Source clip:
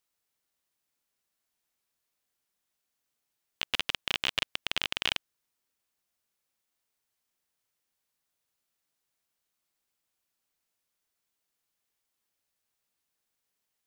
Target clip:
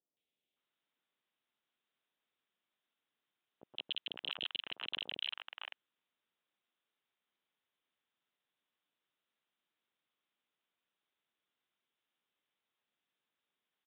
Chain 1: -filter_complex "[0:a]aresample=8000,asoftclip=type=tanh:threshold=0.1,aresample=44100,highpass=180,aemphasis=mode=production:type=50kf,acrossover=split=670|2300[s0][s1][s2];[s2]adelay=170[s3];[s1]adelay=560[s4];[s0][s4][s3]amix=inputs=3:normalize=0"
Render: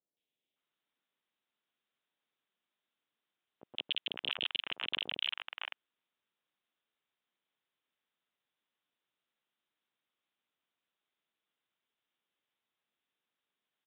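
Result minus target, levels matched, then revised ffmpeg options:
saturation: distortion -5 dB
-filter_complex "[0:a]aresample=8000,asoftclip=type=tanh:threshold=0.0447,aresample=44100,highpass=180,aemphasis=mode=production:type=50kf,acrossover=split=670|2300[s0][s1][s2];[s2]adelay=170[s3];[s1]adelay=560[s4];[s0][s4][s3]amix=inputs=3:normalize=0"

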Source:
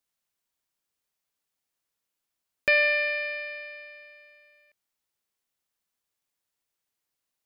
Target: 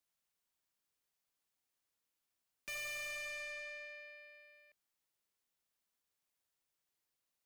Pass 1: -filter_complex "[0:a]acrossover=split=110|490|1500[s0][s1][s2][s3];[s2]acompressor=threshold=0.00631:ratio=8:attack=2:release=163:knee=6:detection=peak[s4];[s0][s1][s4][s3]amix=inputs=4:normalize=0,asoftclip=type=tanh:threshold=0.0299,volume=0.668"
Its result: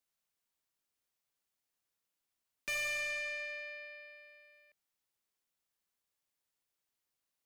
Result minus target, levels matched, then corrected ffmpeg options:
saturation: distortion -4 dB
-filter_complex "[0:a]acrossover=split=110|490|1500[s0][s1][s2][s3];[s2]acompressor=threshold=0.00631:ratio=8:attack=2:release=163:knee=6:detection=peak[s4];[s0][s1][s4][s3]amix=inputs=4:normalize=0,asoftclip=type=tanh:threshold=0.0119,volume=0.668"

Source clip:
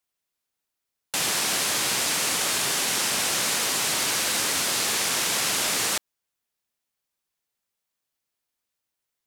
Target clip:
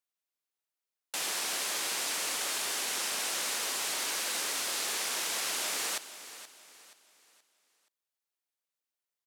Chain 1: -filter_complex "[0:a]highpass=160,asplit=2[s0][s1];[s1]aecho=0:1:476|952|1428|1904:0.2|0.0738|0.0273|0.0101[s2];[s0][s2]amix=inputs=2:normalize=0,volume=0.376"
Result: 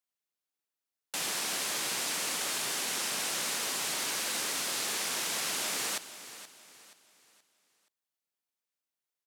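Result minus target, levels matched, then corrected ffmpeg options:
125 Hz band +9.0 dB
-filter_complex "[0:a]highpass=320,asplit=2[s0][s1];[s1]aecho=0:1:476|952|1428|1904:0.2|0.0738|0.0273|0.0101[s2];[s0][s2]amix=inputs=2:normalize=0,volume=0.376"

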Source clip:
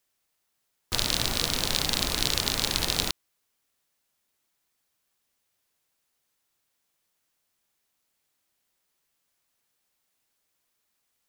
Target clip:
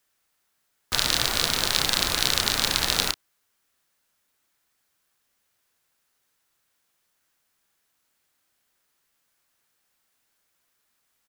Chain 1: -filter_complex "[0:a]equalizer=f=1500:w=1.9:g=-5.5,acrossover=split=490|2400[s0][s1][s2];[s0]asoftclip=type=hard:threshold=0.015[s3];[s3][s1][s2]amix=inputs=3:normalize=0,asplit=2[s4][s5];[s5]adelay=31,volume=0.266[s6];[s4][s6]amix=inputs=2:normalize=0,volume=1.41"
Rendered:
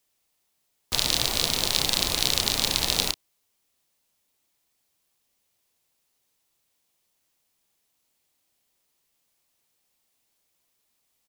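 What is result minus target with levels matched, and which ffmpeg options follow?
2 kHz band -4.0 dB
-filter_complex "[0:a]equalizer=f=1500:w=1.9:g=4.5,acrossover=split=490|2400[s0][s1][s2];[s0]asoftclip=type=hard:threshold=0.015[s3];[s3][s1][s2]amix=inputs=3:normalize=0,asplit=2[s4][s5];[s5]adelay=31,volume=0.266[s6];[s4][s6]amix=inputs=2:normalize=0,volume=1.41"

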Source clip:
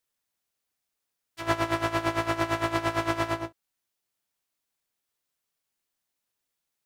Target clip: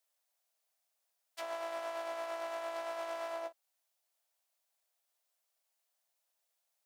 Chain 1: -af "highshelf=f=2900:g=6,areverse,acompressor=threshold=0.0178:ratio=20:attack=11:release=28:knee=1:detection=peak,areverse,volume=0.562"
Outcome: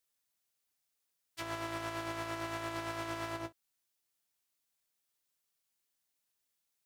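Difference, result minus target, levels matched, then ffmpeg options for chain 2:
500 Hz band -4.5 dB
-af "highpass=f=640:t=q:w=3.2,highshelf=f=2900:g=6,areverse,acompressor=threshold=0.0178:ratio=20:attack=11:release=28:knee=1:detection=peak,areverse,volume=0.562"

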